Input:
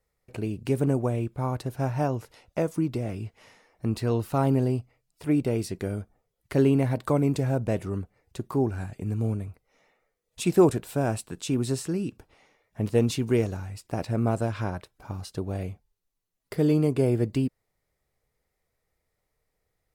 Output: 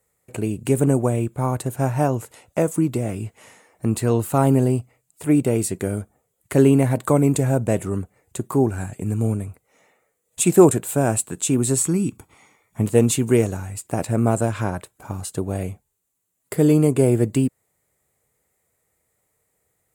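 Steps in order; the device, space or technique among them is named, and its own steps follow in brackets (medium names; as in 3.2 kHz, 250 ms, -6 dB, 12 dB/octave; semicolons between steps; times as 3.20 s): 11.77–12.83 s: comb 0.9 ms, depth 50%; budget condenser microphone (high-pass 85 Hz; resonant high shelf 6.3 kHz +6 dB, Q 3); trim +6.5 dB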